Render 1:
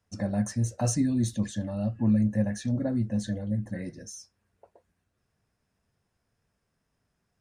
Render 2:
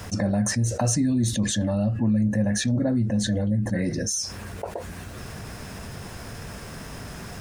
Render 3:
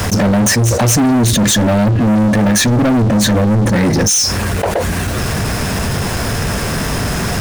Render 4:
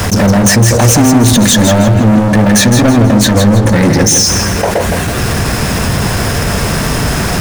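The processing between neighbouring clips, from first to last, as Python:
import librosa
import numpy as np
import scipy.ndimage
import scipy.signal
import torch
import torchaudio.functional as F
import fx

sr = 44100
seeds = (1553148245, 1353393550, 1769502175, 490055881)

y1 = fx.env_flatten(x, sr, amount_pct=70)
y2 = fx.leveller(y1, sr, passes=5)
y2 = y2 * librosa.db_to_amplitude(2.5)
y3 = fx.echo_feedback(y2, sr, ms=162, feedback_pct=36, wet_db=-6.5)
y3 = y3 * librosa.db_to_amplitude(3.5)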